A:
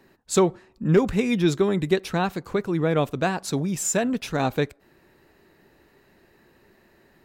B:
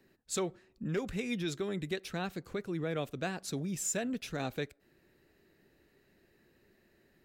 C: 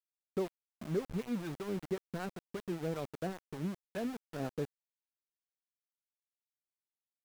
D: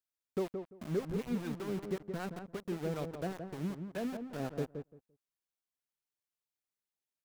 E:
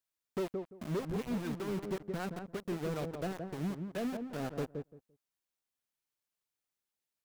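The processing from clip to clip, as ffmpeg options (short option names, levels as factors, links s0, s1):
-filter_complex "[0:a]equalizer=f=960:w=1.7:g=-9,acrossover=split=550|6600[s0][s1][s2];[s0]alimiter=limit=0.0841:level=0:latency=1:release=269[s3];[s3][s1][s2]amix=inputs=3:normalize=0,volume=0.376"
-filter_complex "[0:a]acrossover=split=730[s0][s1];[s0]aeval=exprs='val(0)*(1-0.7/2+0.7/2*cos(2*PI*5.2*n/s))':c=same[s2];[s1]aeval=exprs='val(0)*(1-0.7/2-0.7/2*cos(2*PI*5.2*n/s))':c=same[s3];[s2][s3]amix=inputs=2:normalize=0,adynamicsmooth=sensitivity=2.5:basefreq=880,aeval=exprs='val(0)*gte(abs(val(0)),0.00668)':c=same,volume=1.26"
-filter_complex "[0:a]asplit=2[s0][s1];[s1]adelay=171,lowpass=f=1100:p=1,volume=0.501,asplit=2[s2][s3];[s3]adelay=171,lowpass=f=1100:p=1,volume=0.18,asplit=2[s4][s5];[s5]adelay=171,lowpass=f=1100:p=1,volume=0.18[s6];[s0][s2][s4][s6]amix=inputs=4:normalize=0"
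-af "asoftclip=type=hard:threshold=0.0237,volume=1.26"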